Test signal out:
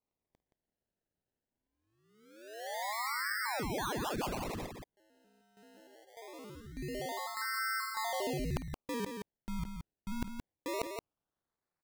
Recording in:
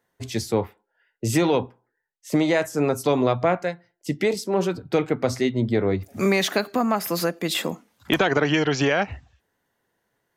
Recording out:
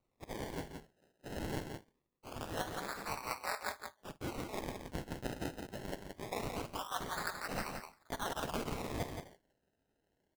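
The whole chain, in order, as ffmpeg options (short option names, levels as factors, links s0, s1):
-filter_complex "[0:a]acrossover=split=5700[s0][s1];[s1]acompressor=threshold=0.01:ratio=4:attack=1:release=60[s2];[s0][s2]amix=inputs=2:normalize=0,highpass=f=940:w=0.5412,highpass=f=940:w=1.3066,areverse,acompressor=threshold=0.0282:ratio=10,areverse,aeval=exprs='val(0)*sin(2*PI*110*n/s)':c=same,acrusher=samples=26:mix=1:aa=0.000001:lfo=1:lforange=26:lforate=0.23,asplit=2[s3][s4];[s4]aecho=0:1:51|172:0.126|0.501[s5];[s3][s5]amix=inputs=2:normalize=0,volume=0.841"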